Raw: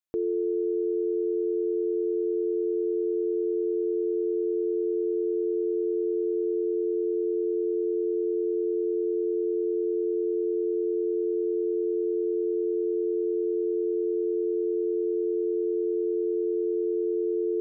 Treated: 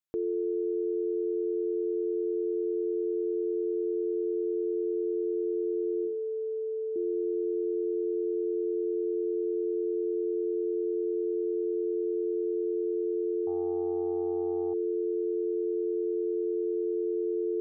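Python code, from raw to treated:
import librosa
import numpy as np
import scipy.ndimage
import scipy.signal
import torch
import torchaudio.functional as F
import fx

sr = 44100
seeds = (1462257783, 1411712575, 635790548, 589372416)

y = fx.hum_notches(x, sr, base_hz=50, count=7, at=(6.05, 6.96))
y = fx.doppler_dist(y, sr, depth_ms=0.13, at=(13.47, 14.74))
y = y * 10.0 ** (-3.0 / 20.0)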